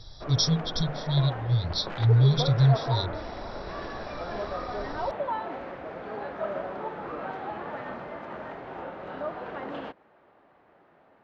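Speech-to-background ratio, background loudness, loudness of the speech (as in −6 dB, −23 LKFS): 10.5 dB, −35.5 LKFS, −25.0 LKFS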